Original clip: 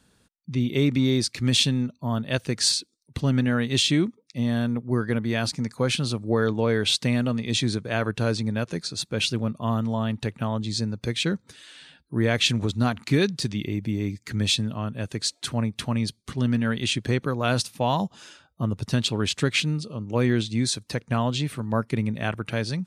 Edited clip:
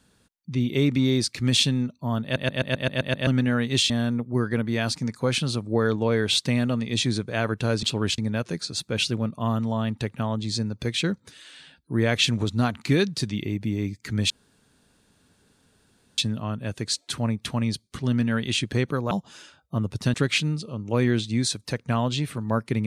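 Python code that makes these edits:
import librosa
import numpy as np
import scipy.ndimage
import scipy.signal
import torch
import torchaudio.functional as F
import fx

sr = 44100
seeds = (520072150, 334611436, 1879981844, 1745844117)

y = fx.edit(x, sr, fx.stutter_over(start_s=2.23, slice_s=0.13, count=8),
    fx.cut(start_s=3.9, length_s=0.57),
    fx.insert_room_tone(at_s=14.52, length_s=1.88),
    fx.cut(start_s=17.45, length_s=0.53),
    fx.move(start_s=19.01, length_s=0.35, to_s=8.4), tone=tone)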